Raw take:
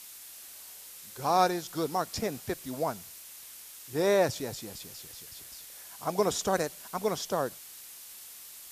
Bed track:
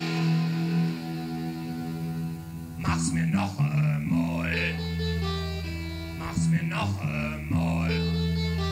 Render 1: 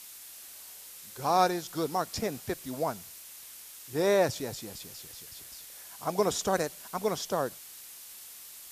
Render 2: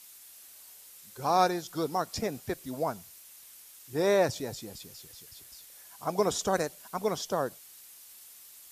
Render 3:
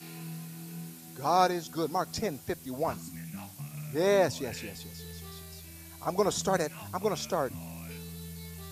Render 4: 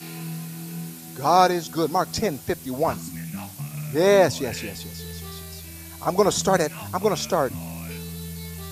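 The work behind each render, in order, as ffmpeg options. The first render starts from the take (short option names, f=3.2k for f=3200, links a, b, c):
-af anull
-af "afftdn=nr=6:nf=-48"
-filter_complex "[1:a]volume=-17dB[a];[0:a][a]amix=inputs=2:normalize=0"
-af "volume=8dB,alimiter=limit=-3dB:level=0:latency=1"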